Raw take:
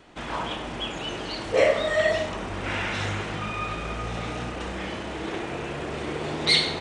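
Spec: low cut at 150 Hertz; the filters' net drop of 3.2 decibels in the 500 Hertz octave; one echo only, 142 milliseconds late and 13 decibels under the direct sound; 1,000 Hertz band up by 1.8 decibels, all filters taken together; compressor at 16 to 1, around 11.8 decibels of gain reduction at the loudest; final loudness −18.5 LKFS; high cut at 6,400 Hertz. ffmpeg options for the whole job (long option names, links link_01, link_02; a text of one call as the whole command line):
ffmpeg -i in.wav -af "highpass=150,lowpass=6400,equalizer=frequency=500:width_type=o:gain=-5.5,equalizer=frequency=1000:width_type=o:gain=4,acompressor=threshold=-28dB:ratio=16,aecho=1:1:142:0.224,volume=14dB" out.wav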